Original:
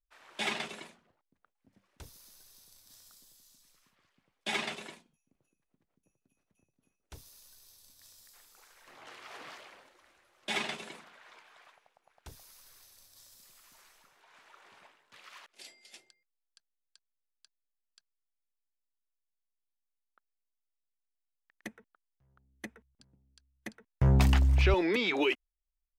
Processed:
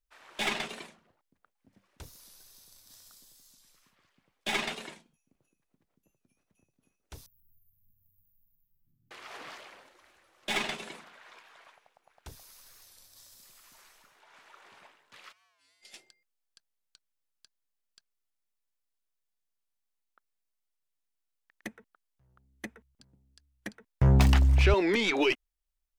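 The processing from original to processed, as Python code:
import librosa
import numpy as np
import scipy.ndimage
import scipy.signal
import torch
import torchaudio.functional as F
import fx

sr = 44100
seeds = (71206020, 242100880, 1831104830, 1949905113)

y = fx.tracing_dist(x, sr, depth_ms=0.063)
y = fx.cheby2_bandstop(y, sr, low_hz=540.0, high_hz=7800.0, order=4, stop_db=60, at=(7.26, 9.11))
y = fx.comb_fb(y, sr, f0_hz=97.0, decay_s=1.3, harmonics='odd', damping=0.0, mix_pct=100, at=(15.31, 15.81), fade=0.02)
y = fx.record_warp(y, sr, rpm=45.0, depth_cents=100.0)
y = y * librosa.db_to_amplitude(2.5)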